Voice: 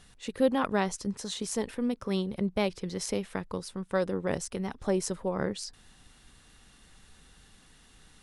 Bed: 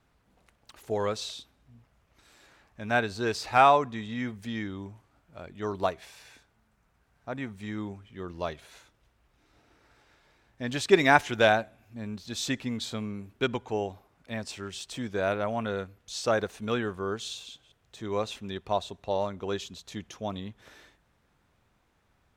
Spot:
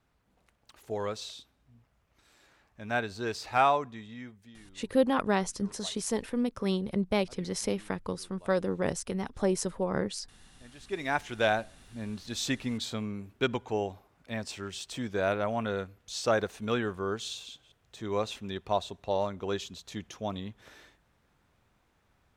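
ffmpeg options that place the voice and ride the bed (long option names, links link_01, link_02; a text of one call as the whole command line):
ffmpeg -i stem1.wav -i stem2.wav -filter_complex "[0:a]adelay=4550,volume=0.5dB[link_01];[1:a]volume=16dB,afade=type=out:start_time=3.62:duration=0.96:silence=0.149624,afade=type=in:start_time=10.82:duration=1.15:silence=0.0944061[link_02];[link_01][link_02]amix=inputs=2:normalize=0" out.wav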